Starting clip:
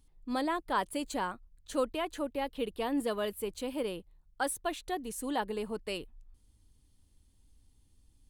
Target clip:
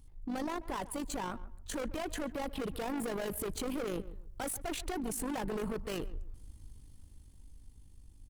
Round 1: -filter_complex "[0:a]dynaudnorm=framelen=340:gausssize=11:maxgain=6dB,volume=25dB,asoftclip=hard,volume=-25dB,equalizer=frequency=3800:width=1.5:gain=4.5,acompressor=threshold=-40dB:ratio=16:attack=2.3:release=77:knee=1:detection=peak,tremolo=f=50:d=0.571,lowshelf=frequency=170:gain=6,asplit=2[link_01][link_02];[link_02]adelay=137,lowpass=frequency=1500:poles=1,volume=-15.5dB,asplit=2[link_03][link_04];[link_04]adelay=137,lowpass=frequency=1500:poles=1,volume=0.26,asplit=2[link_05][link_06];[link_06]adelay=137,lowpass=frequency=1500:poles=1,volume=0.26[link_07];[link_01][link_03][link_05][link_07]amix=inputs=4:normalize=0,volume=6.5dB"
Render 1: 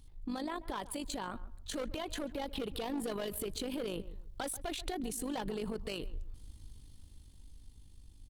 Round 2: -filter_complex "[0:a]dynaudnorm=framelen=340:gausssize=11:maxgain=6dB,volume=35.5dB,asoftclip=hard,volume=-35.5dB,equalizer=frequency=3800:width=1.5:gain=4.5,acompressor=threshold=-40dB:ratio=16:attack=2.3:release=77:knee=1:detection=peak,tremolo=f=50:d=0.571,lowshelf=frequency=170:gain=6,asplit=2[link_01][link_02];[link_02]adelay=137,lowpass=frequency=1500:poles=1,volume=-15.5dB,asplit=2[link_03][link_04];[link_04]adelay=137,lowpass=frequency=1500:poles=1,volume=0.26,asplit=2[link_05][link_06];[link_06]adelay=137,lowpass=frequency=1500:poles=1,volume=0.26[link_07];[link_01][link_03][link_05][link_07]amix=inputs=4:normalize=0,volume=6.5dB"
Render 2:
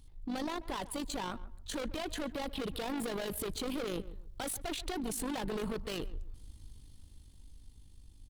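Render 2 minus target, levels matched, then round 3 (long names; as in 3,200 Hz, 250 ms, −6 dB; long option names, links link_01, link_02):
4,000 Hz band +4.5 dB
-filter_complex "[0:a]dynaudnorm=framelen=340:gausssize=11:maxgain=6dB,volume=35.5dB,asoftclip=hard,volume=-35.5dB,equalizer=frequency=3800:width=1.5:gain=-4,acompressor=threshold=-40dB:ratio=16:attack=2.3:release=77:knee=1:detection=peak,tremolo=f=50:d=0.571,lowshelf=frequency=170:gain=6,asplit=2[link_01][link_02];[link_02]adelay=137,lowpass=frequency=1500:poles=1,volume=-15.5dB,asplit=2[link_03][link_04];[link_04]adelay=137,lowpass=frequency=1500:poles=1,volume=0.26,asplit=2[link_05][link_06];[link_06]adelay=137,lowpass=frequency=1500:poles=1,volume=0.26[link_07];[link_01][link_03][link_05][link_07]amix=inputs=4:normalize=0,volume=6.5dB"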